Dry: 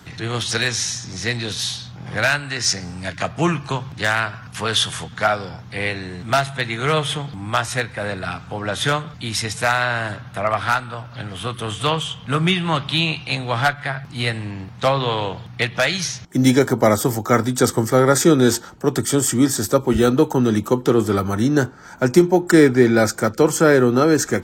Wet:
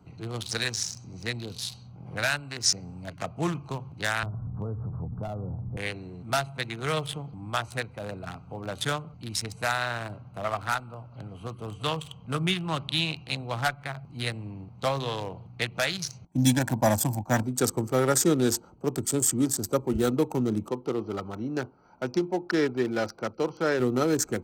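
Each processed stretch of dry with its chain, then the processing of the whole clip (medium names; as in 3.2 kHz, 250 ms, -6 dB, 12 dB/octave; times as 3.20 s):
4.23–5.77 s: steep low-pass 1.4 kHz + tilt EQ -4.5 dB/octave + compression 4:1, threshold -21 dBFS
16.27–17.43 s: gate -29 dBFS, range -8 dB + comb 1.2 ms, depth 94%
20.69–23.80 s: Chebyshev low-pass 5.9 kHz, order 10 + bass shelf 310 Hz -7.5 dB
whole clip: local Wiener filter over 25 samples; treble shelf 4.6 kHz +10.5 dB; trim -9 dB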